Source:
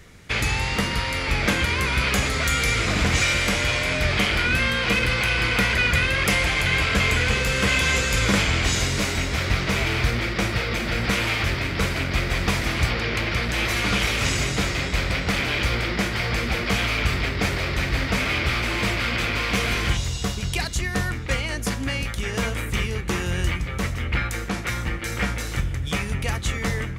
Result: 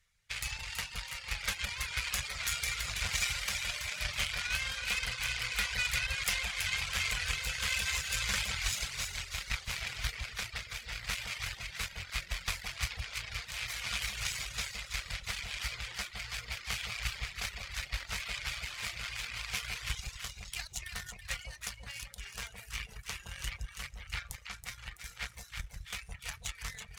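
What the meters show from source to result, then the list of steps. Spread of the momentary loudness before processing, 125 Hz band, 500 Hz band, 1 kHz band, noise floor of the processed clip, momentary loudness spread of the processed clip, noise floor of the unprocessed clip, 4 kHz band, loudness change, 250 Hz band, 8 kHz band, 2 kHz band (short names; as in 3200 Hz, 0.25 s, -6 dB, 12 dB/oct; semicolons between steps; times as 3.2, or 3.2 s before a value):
7 LU, -20.0 dB, -25.5 dB, -17.0 dB, -54 dBFS, 11 LU, -29 dBFS, -10.0 dB, -13.0 dB, -29.0 dB, -7.5 dB, -13.5 dB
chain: added harmonics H 7 -18 dB, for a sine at -4.5 dBFS; flange 1.8 Hz, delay 4.4 ms, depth 3.3 ms, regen -83%; in parallel at -3 dB: soft clip -25.5 dBFS, distortion -9 dB; on the sum: passive tone stack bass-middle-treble 10-0-10; on a send: echo with dull and thin repeats by turns 0.164 s, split 930 Hz, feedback 64%, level -3 dB; on the sum: reverb removal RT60 0.63 s; gain -1.5 dB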